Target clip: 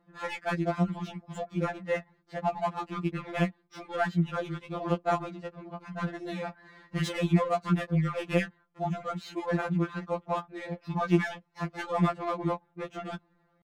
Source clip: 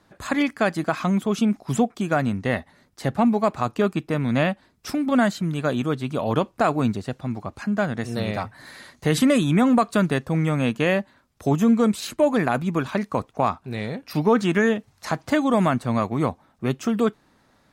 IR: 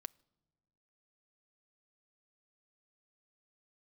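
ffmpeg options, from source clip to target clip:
-af "atempo=1.3,adynamicsmooth=sensitivity=3:basefreq=2100,afftfilt=real='re*2.83*eq(mod(b,8),0)':imag='im*2.83*eq(mod(b,8),0)':win_size=2048:overlap=0.75,volume=0.631"

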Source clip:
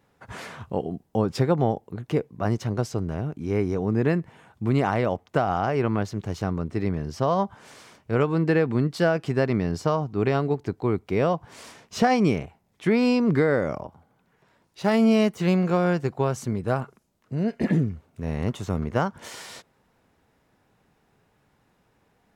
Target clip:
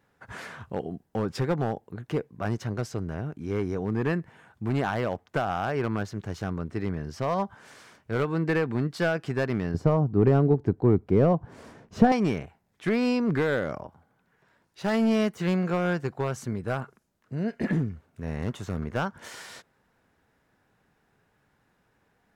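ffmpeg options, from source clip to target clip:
-filter_complex "[0:a]equalizer=f=1600:w=2.8:g=6,aeval=exprs='clip(val(0),-1,0.168)':c=same,asettb=1/sr,asplit=3[s0][s1][s2];[s0]atrim=end=9.744[s3];[s1]atrim=start=9.74:end=12.12,asetpts=PTS-STARTPTS,afade=t=in:d=0.004:c=qsin,afade=t=out:st=2.376:d=0.004:c=qsin,tiltshelf=f=970:g=10[s4];[s2]atrim=start=12.116[s5];[s3][s4]acrossfade=d=0.004:c1=hsin:c2=qsin[s6];[s6][s5]acrossfade=d=0.004:c1=qsin:c2=hsin,volume=0.631"

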